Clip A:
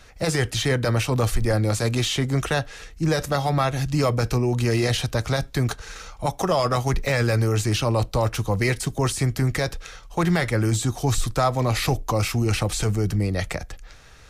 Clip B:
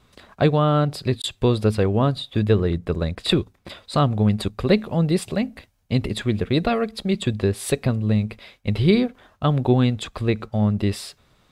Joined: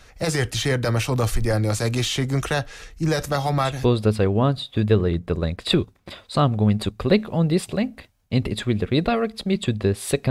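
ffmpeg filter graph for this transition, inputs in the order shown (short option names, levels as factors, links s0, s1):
-filter_complex "[0:a]apad=whole_dur=10.3,atrim=end=10.3,atrim=end=3.91,asetpts=PTS-STARTPTS[s0];[1:a]atrim=start=1.18:end=7.89,asetpts=PTS-STARTPTS[s1];[s0][s1]acrossfade=d=0.32:c1=qsin:c2=qsin"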